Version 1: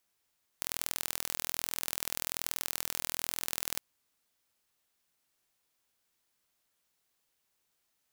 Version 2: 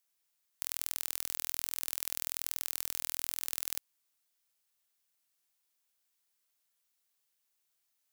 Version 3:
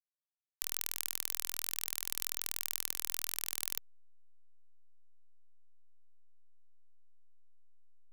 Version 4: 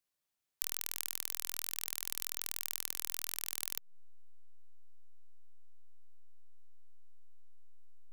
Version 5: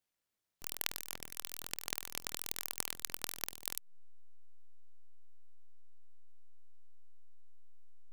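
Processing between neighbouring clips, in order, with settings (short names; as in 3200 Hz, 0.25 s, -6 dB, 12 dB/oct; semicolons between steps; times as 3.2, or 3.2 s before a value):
tilt +2 dB/oct; gain -7.5 dB
backlash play -45 dBFS; shaped vibrato square 5.5 Hz, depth 100 cents
compressor, threshold -39 dBFS, peak gain reduction 11 dB; gain +8.5 dB
noise-modulated delay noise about 1400 Hz, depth 0.24 ms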